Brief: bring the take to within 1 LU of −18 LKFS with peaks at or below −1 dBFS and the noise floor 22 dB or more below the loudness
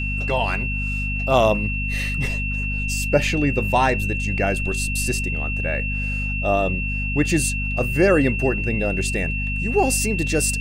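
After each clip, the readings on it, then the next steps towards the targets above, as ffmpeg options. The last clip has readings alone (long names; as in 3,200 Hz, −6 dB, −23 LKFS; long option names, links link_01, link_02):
mains hum 50 Hz; hum harmonics up to 250 Hz; level of the hum −23 dBFS; interfering tone 2,700 Hz; level of the tone −26 dBFS; integrated loudness −21.5 LKFS; sample peak −2.5 dBFS; target loudness −18.0 LKFS
→ -af "bandreject=frequency=50:width_type=h:width=4,bandreject=frequency=100:width_type=h:width=4,bandreject=frequency=150:width_type=h:width=4,bandreject=frequency=200:width_type=h:width=4,bandreject=frequency=250:width_type=h:width=4"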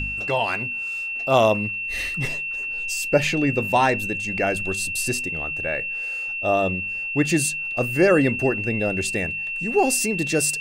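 mains hum none found; interfering tone 2,700 Hz; level of the tone −26 dBFS
→ -af "bandreject=frequency=2700:width=30"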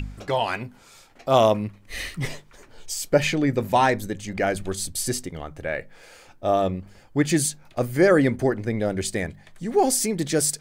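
interfering tone none found; integrated loudness −23.5 LKFS; sample peak −4.0 dBFS; target loudness −18.0 LKFS
→ -af "volume=5.5dB,alimiter=limit=-1dB:level=0:latency=1"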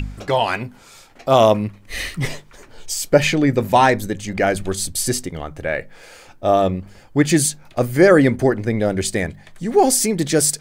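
integrated loudness −18.5 LKFS; sample peak −1.0 dBFS; background noise floor −47 dBFS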